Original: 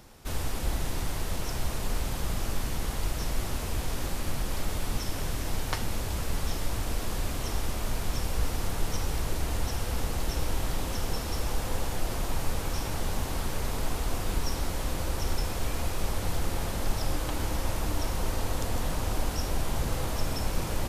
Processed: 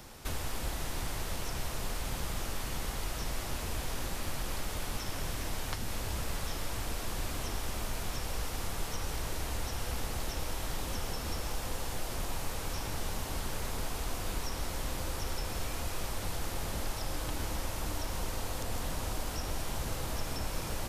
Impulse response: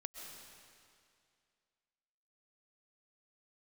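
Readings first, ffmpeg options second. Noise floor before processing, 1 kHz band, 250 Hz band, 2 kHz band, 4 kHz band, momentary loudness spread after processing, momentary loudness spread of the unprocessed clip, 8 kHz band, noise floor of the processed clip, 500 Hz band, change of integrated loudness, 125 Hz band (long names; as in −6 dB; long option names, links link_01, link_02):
−33 dBFS, −3.5 dB, −6.0 dB, −2.5 dB, −2.5 dB, 1 LU, 2 LU, −2.5 dB, −38 dBFS, −5.0 dB, −4.5 dB, −6.5 dB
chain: -filter_complex "[0:a]acrossover=split=370|3400[link_01][link_02][link_03];[link_01]acompressor=threshold=-35dB:ratio=4[link_04];[link_02]acompressor=threshold=-46dB:ratio=4[link_05];[link_03]acompressor=threshold=-49dB:ratio=4[link_06];[link_04][link_05][link_06]amix=inputs=3:normalize=0,asplit=2[link_07][link_08];[1:a]atrim=start_sample=2205,lowshelf=frequency=480:gain=-11.5[link_09];[link_08][link_09]afir=irnorm=-1:irlink=0,volume=2dB[link_10];[link_07][link_10]amix=inputs=2:normalize=0"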